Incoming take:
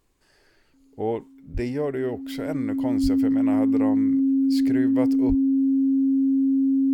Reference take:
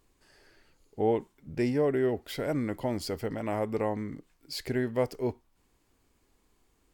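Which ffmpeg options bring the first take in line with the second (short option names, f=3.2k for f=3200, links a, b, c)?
-filter_complex "[0:a]bandreject=f=270:w=30,asplit=3[a][b][c];[a]afade=t=out:st=1.53:d=0.02[d];[b]highpass=f=140:w=0.5412,highpass=f=140:w=1.3066,afade=t=in:st=1.53:d=0.02,afade=t=out:st=1.65:d=0.02[e];[c]afade=t=in:st=1.65:d=0.02[f];[d][e][f]amix=inputs=3:normalize=0,asplit=3[g][h][i];[g]afade=t=out:st=3.02:d=0.02[j];[h]highpass=f=140:w=0.5412,highpass=f=140:w=1.3066,afade=t=in:st=3.02:d=0.02,afade=t=out:st=3.14:d=0.02[k];[i]afade=t=in:st=3.14:d=0.02[l];[j][k][l]amix=inputs=3:normalize=0,asplit=3[m][n][o];[m]afade=t=out:st=5.28:d=0.02[p];[n]highpass=f=140:w=0.5412,highpass=f=140:w=1.3066,afade=t=in:st=5.28:d=0.02,afade=t=out:st=5.4:d=0.02[q];[o]afade=t=in:st=5.4:d=0.02[r];[p][q][r]amix=inputs=3:normalize=0"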